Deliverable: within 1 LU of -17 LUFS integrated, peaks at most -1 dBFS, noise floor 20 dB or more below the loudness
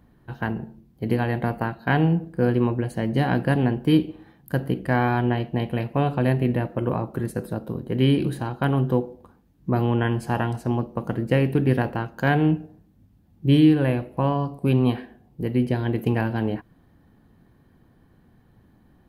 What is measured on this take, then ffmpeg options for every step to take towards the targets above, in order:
loudness -23.5 LUFS; peak -6.0 dBFS; loudness target -17.0 LUFS
-> -af "volume=6.5dB,alimiter=limit=-1dB:level=0:latency=1"

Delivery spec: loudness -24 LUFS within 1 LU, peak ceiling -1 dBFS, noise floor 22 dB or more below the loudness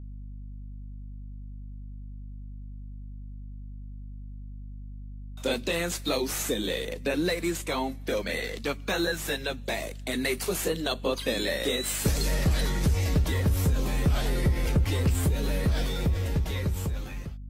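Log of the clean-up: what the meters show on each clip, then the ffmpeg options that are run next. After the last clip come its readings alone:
hum 50 Hz; harmonics up to 250 Hz; hum level -37 dBFS; loudness -28.0 LUFS; peak -14.0 dBFS; loudness target -24.0 LUFS
-> -af "bandreject=f=50:t=h:w=4,bandreject=f=100:t=h:w=4,bandreject=f=150:t=h:w=4,bandreject=f=200:t=h:w=4,bandreject=f=250:t=h:w=4"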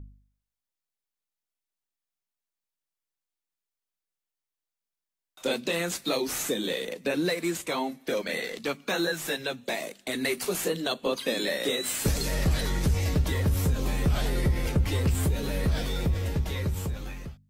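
hum none; loudness -28.5 LUFS; peak -14.5 dBFS; loudness target -24.0 LUFS
-> -af "volume=4.5dB"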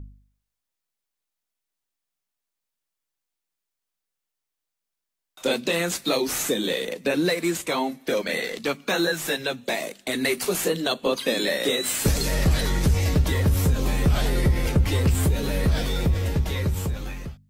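loudness -24.0 LUFS; peak -10.0 dBFS; noise floor -84 dBFS

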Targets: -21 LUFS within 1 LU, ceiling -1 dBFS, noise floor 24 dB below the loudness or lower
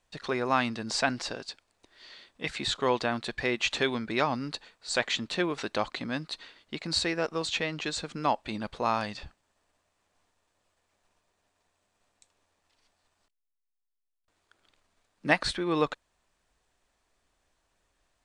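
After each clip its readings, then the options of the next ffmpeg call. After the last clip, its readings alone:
loudness -30.0 LUFS; peak -7.0 dBFS; loudness target -21.0 LUFS
-> -af "volume=9dB,alimiter=limit=-1dB:level=0:latency=1"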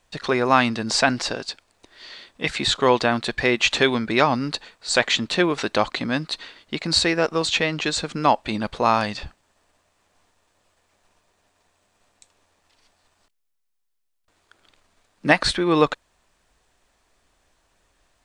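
loudness -21.5 LUFS; peak -1.0 dBFS; noise floor -72 dBFS

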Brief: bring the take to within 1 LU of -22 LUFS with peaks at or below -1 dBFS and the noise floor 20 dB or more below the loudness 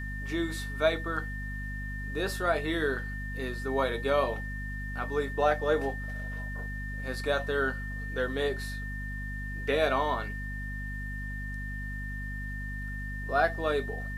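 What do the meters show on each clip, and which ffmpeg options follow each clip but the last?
hum 50 Hz; harmonics up to 250 Hz; hum level -35 dBFS; steady tone 1800 Hz; tone level -39 dBFS; loudness -32.0 LUFS; peak -11.5 dBFS; loudness target -22.0 LUFS
-> -af "bandreject=f=50:t=h:w=4,bandreject=f=100:t=h:w=4,bandreject=f=150:t=h:w=4,bandreject=f=200:t=h:w=4,bandreject=f=250:t=h:w=4"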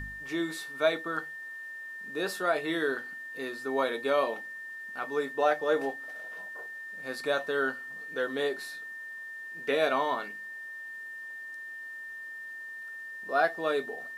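hum none; steady tone 1800 Hz; tone level -39 dBFS
-> -af "bandreject=f=1.8k:w=30"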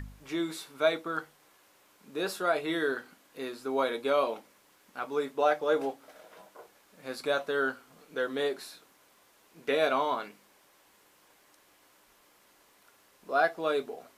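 steady tone none; loudness -31.0 LUFS; peak -12.0 dBFS; loudness target -22.0 LUFS
-> -af "volume=9dB"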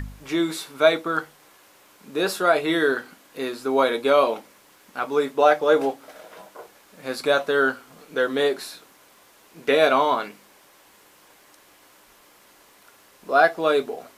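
loudness -22.0 LUFS; peak -3.0 dBFS; noise floor -55 dBFS

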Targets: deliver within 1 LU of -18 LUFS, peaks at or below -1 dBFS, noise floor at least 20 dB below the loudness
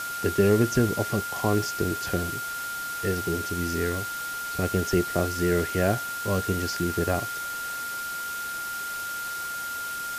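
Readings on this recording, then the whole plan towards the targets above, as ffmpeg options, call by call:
steady tone 1400 Hz; tone level -31 dBFS; noise floor -33 dBFS; noise floor target -47 dBFS; loudness -27.0 LUFS; peak -8.5 dBFS; loudness target -18.0 LUFS
-> -af "bandreject=f=1.4k:w=30"
-af "afftdn=nr=14:nf=-33"
-af "volume=9dB,alimiter=limit=-1dB:level=0:latency=1"

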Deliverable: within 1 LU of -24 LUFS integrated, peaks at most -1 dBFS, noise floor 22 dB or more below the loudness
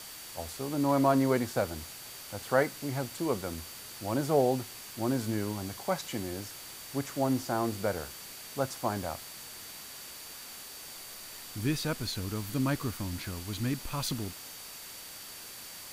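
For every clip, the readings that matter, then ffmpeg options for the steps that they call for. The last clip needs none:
steady tone 4600 Hz; tone level -52 dBFS; noise floor -46 dBFS; noise floor target -56 dBFS; loudness -33.5 LUFS; peak -11.0 dBFS; loudness target -24.0 LUFS
-> -af "bandreject=f=4.6k:w=30"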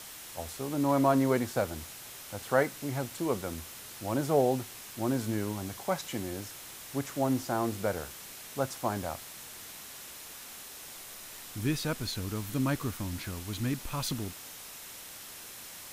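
steady tone none; noise floor -46 dBFS; noise floor target -56 dBFS
-> -af "afftdn=nr=10:nf=-46"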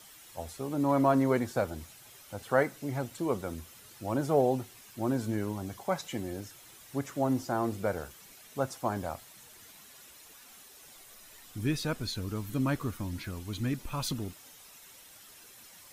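noise floor -54 dBFS; noise floor target -55 dBFS
-> -af "afftdn=nr=6:nf=-54"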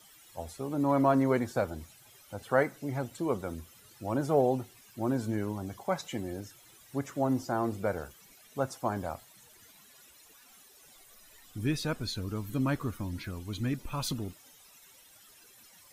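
noise floor -58 dBFS; loudness -32.5 LUFS; peak -11.0 dBFS; loudness target -24.0 LUFS
-> -af "volume=8.5dB"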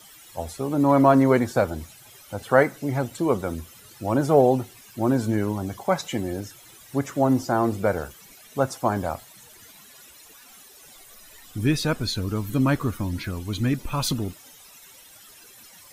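loudness -24.0 LUFS; peak -2.5 dBFS; noise floor -49 dBFS

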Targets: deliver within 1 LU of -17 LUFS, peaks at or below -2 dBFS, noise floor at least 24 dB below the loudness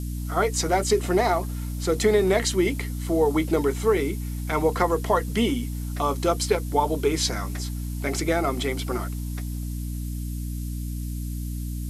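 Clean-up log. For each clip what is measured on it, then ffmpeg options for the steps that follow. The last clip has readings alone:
hum 60 Hz; harmonics up to 300 Hz; hum level -28 dBFS; noise floor -31 dBFS; noise floor target -49 dBFS; loudness -25.0 LUFS; peak -6.5 dBFS; loudness target -17.0 LUFS
-> -af "bandreject=f=60:t=h:w=4,bandreject=f=120:t=h:w=4,bandreject=f=180:t=h:w=4,bandreject=f=240:t=h:w=4,bandreject=f=300:t=h:w=4"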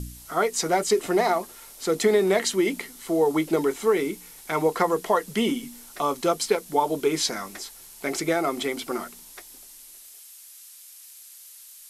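hum none; noise floor -47 dBFS; noise floor target -49 dBFS
-> -af "afftdn=nr=6:nf=-47"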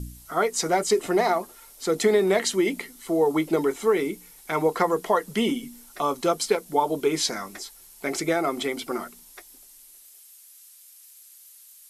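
noise floor -51 dBFS; loudness -25.0 LUFS; peak -7.5 dBFS; loudness target -17.0 LUFS
-> -af "volume=8dB,alimiter=limit=-2dB:level=0:latency=1"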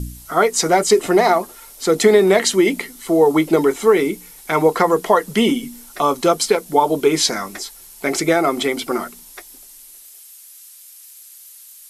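loudness -17.0 LUFS; peak -2.0 dBFS; noise floor -43 dBFS

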